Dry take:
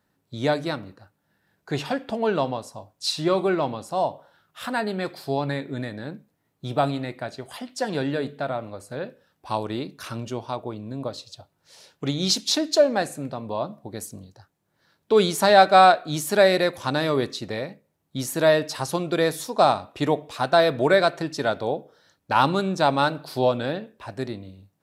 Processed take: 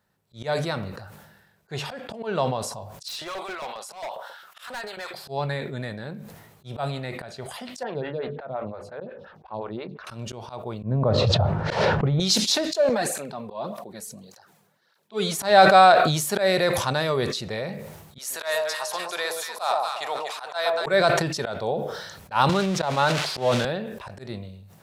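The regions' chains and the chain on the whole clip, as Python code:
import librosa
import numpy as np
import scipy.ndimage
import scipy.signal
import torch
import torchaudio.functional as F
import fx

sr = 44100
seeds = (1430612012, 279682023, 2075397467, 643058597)

y = fx.chain(x, sr, fx.filter_lfo_highpass(shape='saw_up', hz=7.4, low_hz=400.0, high_hz=1700.0, q=0.78),
    fx.overload_stage(gain_db=30.0), at=(3.08, 5.14))
y = fx.chain(y, sr, fx.air_absorb(metres=260.0),
    fx.stagger_phaser(hz=5.7), at=(7.83, 10.07))
y = fx.chain(y, sr, fx.lowpass(hz=1300.0, slope=12),
    fx.peak_eq(hz=110.0, db=5.5, octaves=2.2),
    fx.env_flatten(amount_pct=100), at=(10.83, 12.2))
y = fx.chain(y, sr, fx.highpass(hz=190.0, slope=12),
    fx.flanger_cancel(hz=1.7, depth_ms=3.6), at=(12.89, 15.39))
y = fx.chain(y, sr, fx.highpass(hz=910.0, slope=12),
    fx.echo_alternate(ms=120, hz=1000.0, feedback_pct=52, wet_db=-2.5), at=(18.18, 20.86))
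y = fx.chain(y, sr, fx.crossing_spikes(level_db=-15.5),
    fx.lowpass(hz=3700.0, slope=12),
    fx.band_squash(depth_pct=40), at=(22.49, 23.65))
y = fx.peak_eq(y, sr, hz=290.0, db=-15.0, octaves=0.29)
y = fx.auto_swell(y, sr, attack_ms=121.0)
y = fx.sustainer(y, sr, db_per_s=45.0)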